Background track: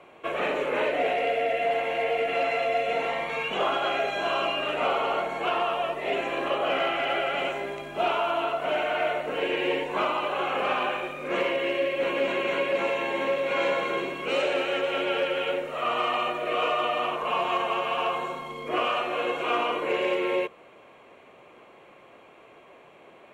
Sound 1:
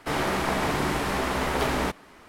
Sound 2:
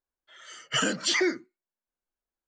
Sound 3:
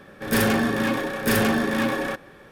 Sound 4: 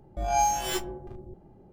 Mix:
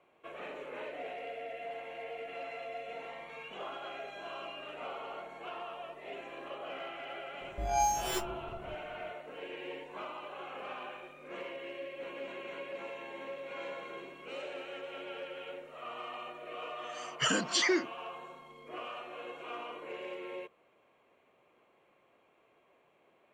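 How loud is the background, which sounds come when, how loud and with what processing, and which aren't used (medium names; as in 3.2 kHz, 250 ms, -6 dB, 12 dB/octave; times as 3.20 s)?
background track -16.5 dB
7.41 s: add 4 -5 dB
16.48 s: add 2 -3.5 dB
not used: 1, 3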